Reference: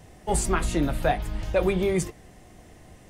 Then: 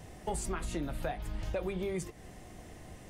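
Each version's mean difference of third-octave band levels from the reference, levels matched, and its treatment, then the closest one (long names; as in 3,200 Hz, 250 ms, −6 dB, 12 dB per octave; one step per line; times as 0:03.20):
5.5 dB: downward compressor 6 to 1, threshold −33 dBFS, peak gain reduction 14.5 dB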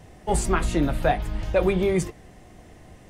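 1.0 dB: high-shelf EQ 5,300 Hz −5.5 dB
level +2 dB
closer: second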